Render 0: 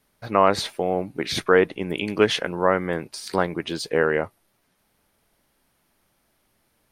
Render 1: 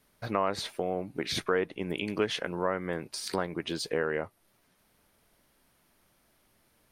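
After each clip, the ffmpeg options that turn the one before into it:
-af "bandreject=f=820:w=25,acompressor=threshold=0.0224:ratio=2"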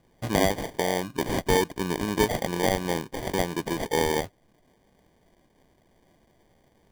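-af "acrusher=samples=33:mix=1:aa=0.000001,volume=1.88"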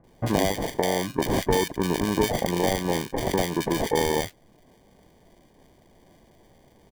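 -filter_complex "[0:a]acompressor=threshold=0.0447:ratio=2.5,acrossover=split=1600[s0][s1];[s1]adelay=40[s2];[s0][s2]amix=inputs=2:normalize=0,volume=2.11"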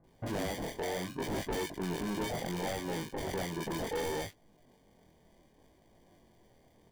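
-af "flanger=delay=18.5:depth=6.5:speed=0.68,asoftclip=type=tanh:threshold=0.0562,volume=0.596"

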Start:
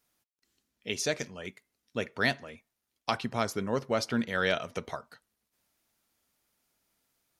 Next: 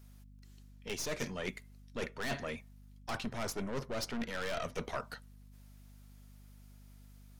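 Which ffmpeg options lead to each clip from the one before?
-af "aeval=exprs='(tanh(44.7*val(0)+0.65)-tanh(0.65))/44.7':c=same,areverse,acompressor=threshold=0.00631:ratio=12,areverse,aeval=exprs='val(0)+0.000562*(sin(2*PI*50*n/s)+sin(2*PI*2*50*n/s)/2+sin(2*PI*3*50*n/s)/3+sin(2*PI*4*50*n/s)/4+sin(2*PI*5*50*n/s)/5)':c=same,volume=3.35"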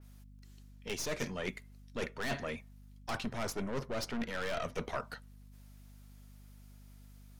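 -af "adynamicequalizer=threshold=0.00178:dfrequency=3400:dqfactor=0.7:tfrequency=3400:tqfactor=0.7:attack=5:release=100:ratio=0.375:range=1.5:mode=cutabove:tftype=highshelf,volume=1.12"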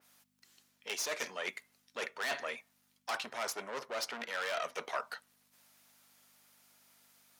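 -af "highpass=640,volume=1.41"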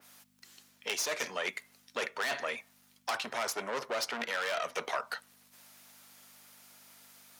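-filter_complex "[0:a]acrossover=split=130[s0][s1];[s1]acompressor=threshold=0.00891:ratio=2.5[s2];[s0][s2]amix=inputs=2:normalize=0,volume=2.66"

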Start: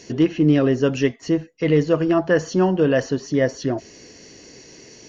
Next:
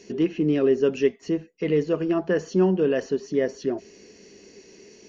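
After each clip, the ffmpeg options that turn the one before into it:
-af "equalizer=f=125:t=o:w=0.33:g=-10,equalizer=f=200:t=o:w=0.33:g=10,equalizer=f=400:t=o:w=0.33:g=11,equalizer=f=2500:t=o:w=0.33:g=5,volume=0.376"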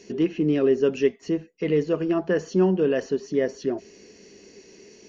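-af anull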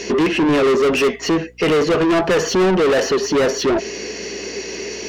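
-filter_complex "[0:a]asplit=2[s0][s1];[s1]highpass=f=720:p=1,volume=44.7,asoftclip=type=tanh:threshold=0.376[s2];[s0][s2]amix=inputs=2:normalize=0,lowpass=f=3900:p=1,volume=0.501,aeval=exprs='val(0)+0.00447*(sin(2*PI*60*n/s)+sin(2*PI*2*60*n/s)/2+sin(2*PI*3*60*n/s)/3+sin(2*PI*4*60*n/s)/4+sin(2*PI*5*60*n/s)/5)':c=same"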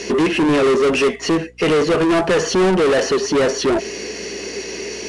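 -ar 22050 -c:a adpcm_ima_wav

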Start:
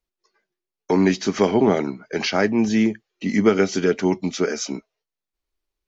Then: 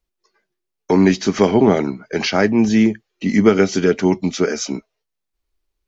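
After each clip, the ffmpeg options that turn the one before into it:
-af "lowshelf=f=140:g=6,volume=1.41"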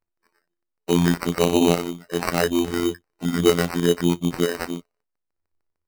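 -af "afftfilt=real='hypot(re,im)*cos(PI*b)':imag='0':win_size=2048:overlap=0.75,acrusher=samples=13:mix=1:aa=0.000001,volume=0.891"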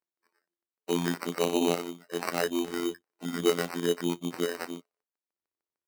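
-af "highpass=240,volume=0.447"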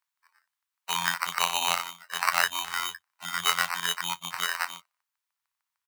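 -af "firequalizer=gain_entry='entry(120,0);entry(240,-23);entry(360,-27);entry(640,-3);entry(960,12);entry(5000,9)':delay=0.05:min_phase=1,volume=0.841"

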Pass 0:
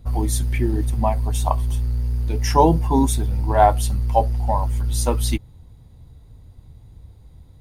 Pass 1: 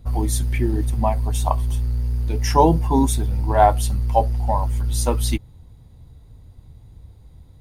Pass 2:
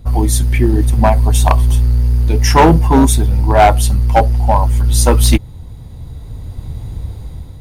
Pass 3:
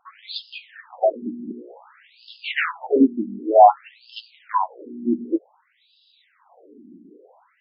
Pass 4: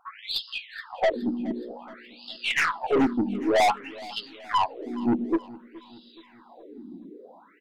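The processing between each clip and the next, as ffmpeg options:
-af anull
-af "dynaudnorm=f=400:g=5:m=4.47,asoftclip=type=hard:threshold=0.282,volume=2.51"
-af "afftfilt=real='re*between(b*sr/1024,250*pow(3800/250,0.5+0.5*sin(2*PI*0.54*pts/sr))/1.41,250*pow(3800/250,0.5+0.5*sin(2*PI*0.54*pts/sr))*1.41)':imag='im*between(b*sr/1024,250*pow(3800/250,0.5+0.5*sin(2*PI*0.54*pts/sr))/1.41,250*pow(3800/250,0.5+0.5*sin(2*PI*0.54*pts/sr))*1.41)':win_size=1024:overlap=0.75,volume=0.891"
-af "aeval=exprs='(tanh(12.6*val(0)+0.15)-tanh(0.15))/12.6':c=same,aecho=1:1:422|844|1266|1688:0.1|0.05|0.025|0.0125,volume=1.58"

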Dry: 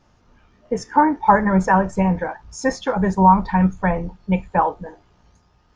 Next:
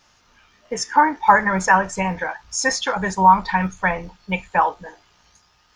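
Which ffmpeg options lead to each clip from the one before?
-af "tiltshelf=f=970:g=-10,volume=1.19"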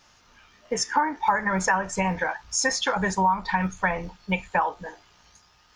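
-af "acompressor=threshold=0.1:ratio=4"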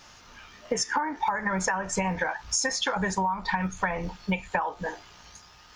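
-af "acompressor=threshold=0.0282:ratio=6,volume=2.11"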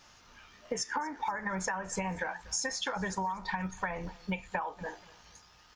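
-af "aecho=1:1:240|480|720:0.0841|0.0337|0.0135,volume=0.447"

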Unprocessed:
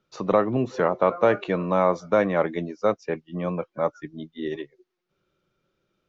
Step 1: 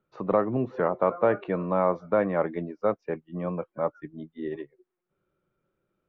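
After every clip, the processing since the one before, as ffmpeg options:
-af "lowpass=1800,volume=0.708"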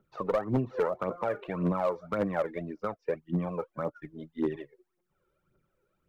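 -af "acompressor=threshold=0.0316:ratio=3,aphaser=in_gain=1:out_gain=1:delay=2.4:decay=0.67:speed=1.8:type=triangular,asoftclip=type=hard:threshold=0.0944"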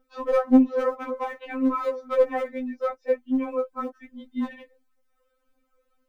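-af "afftfilt=real='re*3.46*eq(mod(b,12),0)':imag='im*3.46*eq(mod(b,12),0)':win_size=2048:overlap=0.75,volume=2.37"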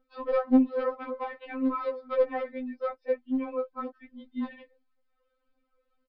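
-af "aresample=11025,aresample=44100,volume=0.596"

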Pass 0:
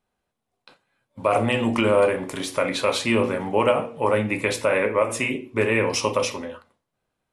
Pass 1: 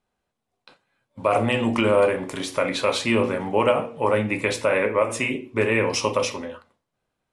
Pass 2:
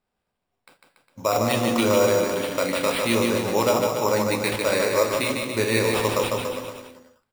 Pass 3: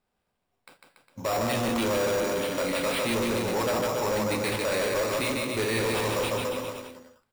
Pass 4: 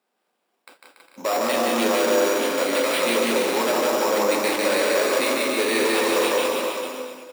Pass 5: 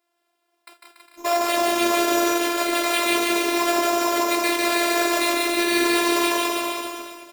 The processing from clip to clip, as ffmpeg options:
-af "lowpass=10000"
-af "acrusher=samples=7:mix=1:aa=0.000001,aecho=1:1:150|285|406.5|515.8|614.3:0.631|0.398|0.251|0.158|0.1,volume=0.794"
-af "asoftclip=type=tanh:threshold=0.0596,volume=1.12"
-filter_complex "[0:a]highpass=f=250:w=0.5412,highpass=f=250:w=1.3066,asplit=2[s0][s1];[s1]aecho=0:1:180|324|439.2|531.4|605.1:0.631|0.398|0.251|0.158|0.1[s2];[s0][s2]amix=inputs=2:normalize=0,volume=1.68"
-af "lowshelf=f=190:g=-9,afftfilt=real='hypot(re,im)*cos(PI*b)':imag='0':win_size=512:overlap=0.75,volume=1.88"

